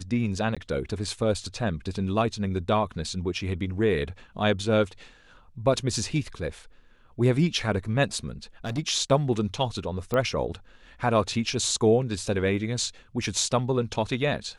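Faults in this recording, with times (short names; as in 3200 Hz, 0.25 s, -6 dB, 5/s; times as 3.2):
0.55–0.57 gap 16 ms
8.65–8.79 clipped -27 dBFS
10.14 pop -15 dBFS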